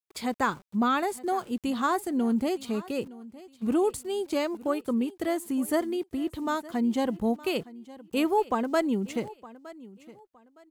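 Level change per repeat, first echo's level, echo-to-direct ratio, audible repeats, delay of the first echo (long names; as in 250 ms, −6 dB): −11.5 dB, −19.0 dB, −18.5 dB, 2, 914 ms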